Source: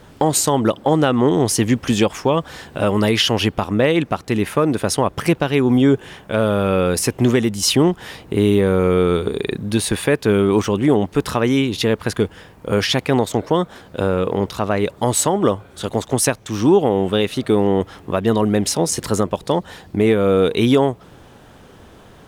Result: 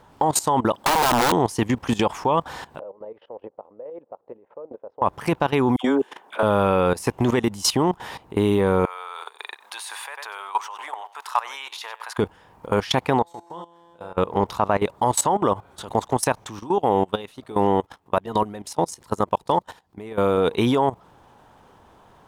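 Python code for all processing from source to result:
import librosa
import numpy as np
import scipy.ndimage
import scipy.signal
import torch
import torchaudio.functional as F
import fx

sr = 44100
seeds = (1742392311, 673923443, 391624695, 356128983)

y = fx.chain(x, sr, fx.high_shelf(hz=2100.0, db=9.5),
    fx.overflow_wrap(gain_db=12.5), at=(0.74, 1.32))
y = fx.chain(y, sr, fx.chopper(hz=4.7, depth_pct=60, duty_pct=20),
    fx.bandpass_q(hz=520.0, q=5.6),
    fx.air_absorb(metres=330.0), at=(2.79, 5.02))
y = fx.chain(y, sr, fx.highpass(hz=260.0, slope=24),
    fx.dispersion(late='lows', ms=74.0, hz=1200.0), at=(5.76, 6.43))
y = fx.chain(y, sr, fx.highpass(hz=830.0, slope=24),
    fx.echo_single(ms=95, db=-14.0), at=(8.85, 12.18))
y = fx.chain(y, sr, fx.low_shelf(hz=460.0, db=-4.5),
    fx.comb_fb(f0_hz=170.0, decay_s=1.3, harmonics='all', damping=0.0, mix_pct=90), at=(13.22, 14.17))
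y = fx.chain(y, sr, fx.high_shelf(hz=3300.0, db=5.0),
    fx.level_steps(step_db=19), at=(16.59, 20.38))
y = fx.peak_eq(y, sr, hz=920.0, db=12.0, octaves=0.86)
y = fx.level_steps(y, sr, step_db=17)
y = y * librosa.db_to_amplitude(-1.5)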